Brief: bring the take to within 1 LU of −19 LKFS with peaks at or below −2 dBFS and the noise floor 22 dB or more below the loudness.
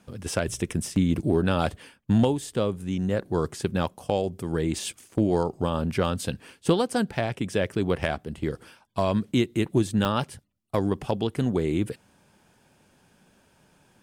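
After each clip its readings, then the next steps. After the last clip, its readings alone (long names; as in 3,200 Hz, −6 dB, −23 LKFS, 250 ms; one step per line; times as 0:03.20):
number of dropouts 2; longest dropout 1.7 ms; integrated loudness −27.0 LKFS; sample peak −10.5 dBFS; target loudness −19.0 LKFS
→ repair the gap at 0:00.96/0:10.05, 1.7 ms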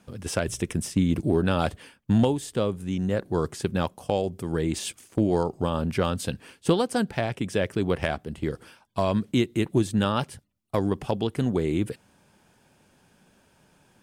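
number of dropouts 0; integrated loudness −27.0 LKFS; sample peak −10.5 dBFS; target loudness −19.0 LKFS
→ level +8 dB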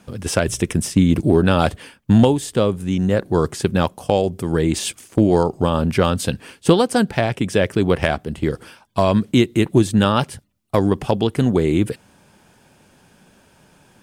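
integrated loudness −19.0 LKFS; sample peak −2.5 dBFS; background noise floor −54 dBFS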